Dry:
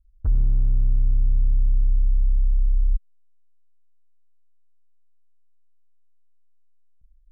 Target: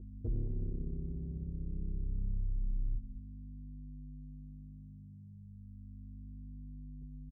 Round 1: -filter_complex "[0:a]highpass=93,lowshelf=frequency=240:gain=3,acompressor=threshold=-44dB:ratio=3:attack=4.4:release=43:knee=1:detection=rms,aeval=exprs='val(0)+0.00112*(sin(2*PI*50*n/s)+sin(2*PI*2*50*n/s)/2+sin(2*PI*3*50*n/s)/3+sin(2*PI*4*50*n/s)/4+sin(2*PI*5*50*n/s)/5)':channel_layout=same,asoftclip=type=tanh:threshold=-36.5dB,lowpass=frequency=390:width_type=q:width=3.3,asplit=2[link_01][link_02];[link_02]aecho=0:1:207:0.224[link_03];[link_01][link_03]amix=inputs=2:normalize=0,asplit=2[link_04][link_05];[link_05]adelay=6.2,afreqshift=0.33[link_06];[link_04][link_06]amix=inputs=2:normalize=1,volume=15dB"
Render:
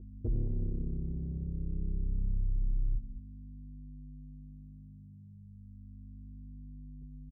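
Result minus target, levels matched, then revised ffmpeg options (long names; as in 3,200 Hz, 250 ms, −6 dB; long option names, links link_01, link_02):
downward compressor: peak gain reduction −4.5 dB
-filter_complex "[0:a]highpass=93,lowshelf=frequency=240:gain=3,acompressor=threshold=-51dB:ratio=3:attack=4.4:release=43:knee=1:detection=rms,aeval=exprs='val(0)+0.00112*(sin(2*PI*50*n/s)+sin(2*PI*2*50*n/s)/2+sin(2*PI*3*50*n/s)/3+sin(2*PI*4*50*n/s)/4+sin(2*PI*5*50*n/s)/5)':channel_layout=same,asoftclip=type=tanh:threshold=-36.5dB,lowpass=frequency=390:width_type=q:width=3.3,asplit=2[link_01][link_02];[link_02]aecho=0:1:207:0.224[link_03];[link_01][link_03]amix=inputs=2:normalize=0,asplit=2[link_04][link_05];[link_05]adelay=6.2,afreqshift=0.33[link_06];[link_04][link_06]amix=inputs=2:normalize=1,volume=15dB"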